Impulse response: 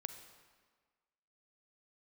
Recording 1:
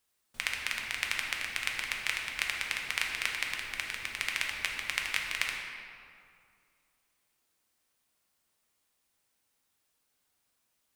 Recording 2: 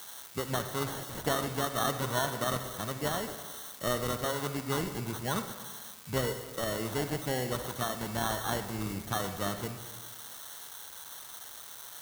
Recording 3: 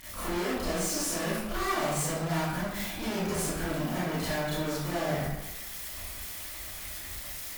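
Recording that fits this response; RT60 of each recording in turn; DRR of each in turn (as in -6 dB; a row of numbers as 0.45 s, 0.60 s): 2; 2.3 s, 1.5 s, 0.95 s; -0.5 dB, 8.0 dB, -11.5 dB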